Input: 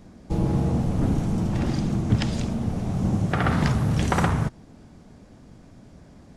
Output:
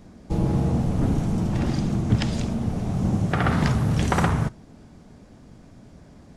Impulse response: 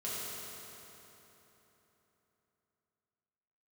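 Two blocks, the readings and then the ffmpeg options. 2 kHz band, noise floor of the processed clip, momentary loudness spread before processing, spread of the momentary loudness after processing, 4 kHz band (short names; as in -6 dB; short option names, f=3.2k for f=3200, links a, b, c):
+0.5 dB, -49 dBFS, 5 LU, 5 LU, +0.5 dB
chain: -filter_complex "[0:a]asplit=2[a][b];[1:a]atrim=start_sample=2205,atrim=end_sample=3087[c];[b][c]afir=irnorm=-1:irlink=0,volume=-18dB[d];[a][d]amix=inputs=2:normalize=0"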